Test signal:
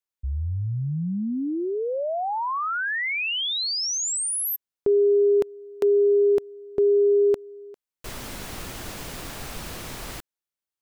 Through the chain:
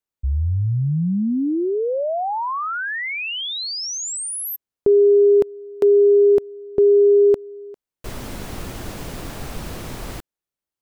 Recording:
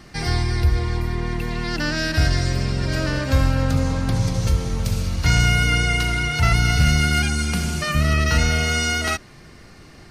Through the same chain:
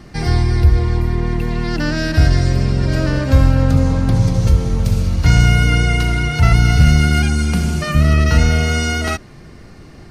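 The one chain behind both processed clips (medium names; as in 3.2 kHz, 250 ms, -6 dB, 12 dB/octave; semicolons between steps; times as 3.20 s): tilt shelf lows +4 dB, about 880 Hz; trim +3 dB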